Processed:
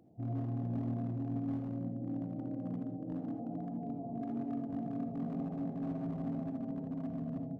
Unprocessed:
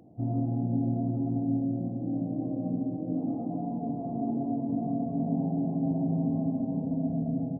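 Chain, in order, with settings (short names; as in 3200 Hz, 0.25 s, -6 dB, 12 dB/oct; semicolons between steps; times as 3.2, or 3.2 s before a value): hard clip -24.5 dBFS, distortion -17 dB; non-linear reverb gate 0.1 s rising, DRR 7.5 dB; gain -8.5 dB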